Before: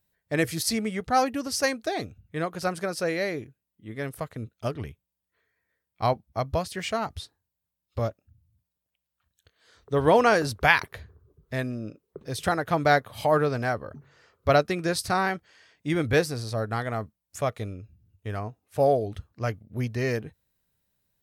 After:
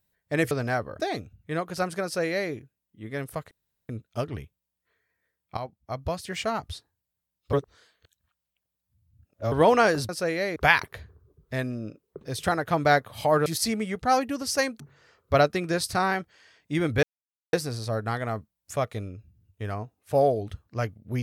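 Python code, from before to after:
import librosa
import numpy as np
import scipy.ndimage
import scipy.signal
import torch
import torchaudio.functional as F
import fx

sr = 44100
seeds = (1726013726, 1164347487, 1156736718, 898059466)

y = fx.edit(x, sr, fx.swap(start_s=0.51, length_s=1.34, other_s=13.46, other_length_s=0.49),
    fx.duplicate(start_s=2.89, length_s=0.47, to_s=10.56),
    fx.insert_room_tone(at_s=4.36, length_s=0.38),
    fx.fade_in_from(start_s=6.04, length_s=0.84, floor_db=-13.5),
    fx.reverse_span(start_s=8.0, length_s=1.99),
    fx.insert_silence(at_s=16.18, length_s=0.5), tone=tone)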